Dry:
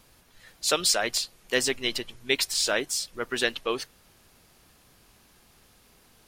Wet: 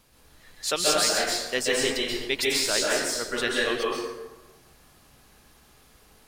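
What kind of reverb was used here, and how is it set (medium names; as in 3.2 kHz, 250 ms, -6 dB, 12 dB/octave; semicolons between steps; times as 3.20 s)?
plate-style reverb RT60 1.2 s, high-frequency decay 0.55×, pre-delay 120 ms, DRR -4.5 dB; trim -3 dB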